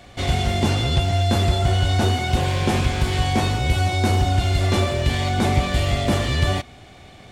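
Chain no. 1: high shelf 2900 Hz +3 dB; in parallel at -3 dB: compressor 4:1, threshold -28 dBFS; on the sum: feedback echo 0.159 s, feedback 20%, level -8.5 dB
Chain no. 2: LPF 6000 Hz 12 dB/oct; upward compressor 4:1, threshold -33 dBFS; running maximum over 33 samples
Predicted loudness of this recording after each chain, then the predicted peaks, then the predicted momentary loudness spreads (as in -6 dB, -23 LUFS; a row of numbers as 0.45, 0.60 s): -18.0, -22.0 LUFS; -4.5, -8.0 dBFS; 2, 3 LU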